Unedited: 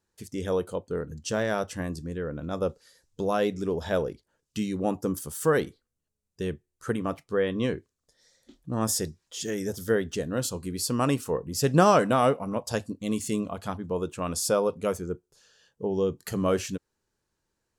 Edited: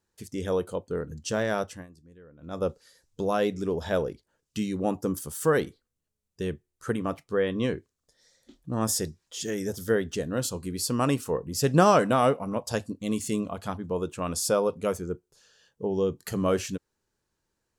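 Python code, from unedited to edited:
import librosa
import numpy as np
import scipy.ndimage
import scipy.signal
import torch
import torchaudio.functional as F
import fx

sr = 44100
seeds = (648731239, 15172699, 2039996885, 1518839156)

y = fx.edit(x, sr, fx.fade_down_up(start_s=1.61, length_s=1.03, db=-19.0, fade_s=0.26), tone=tone)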